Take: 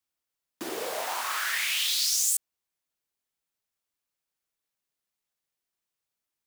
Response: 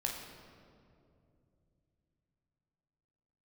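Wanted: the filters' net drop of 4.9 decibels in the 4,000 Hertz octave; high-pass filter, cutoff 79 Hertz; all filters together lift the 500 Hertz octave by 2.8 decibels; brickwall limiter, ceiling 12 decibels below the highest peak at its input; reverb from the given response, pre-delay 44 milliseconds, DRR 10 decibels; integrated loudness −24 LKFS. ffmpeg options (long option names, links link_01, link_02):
-filter_complex "[0:a]highpass=79,equalizer=frequency=500:width_type=o:gain=3.5,equalizer=frequency=4000:width_type=o:gain=-6.5,alimiter=level_in=2.5dB:limit=-24dB:level=0:latency=1,volume=-2.5dB,asplit=2[link_01][link_02];[1:a]atrim=start_sample=2205,adelay=44[link_03];[link_02][link_03]afir=irnorm=-1:irlink=0,volume=-13dB[link_04];[link_01][link_04]amix=inputs=2:normalize=0,volume=10dB"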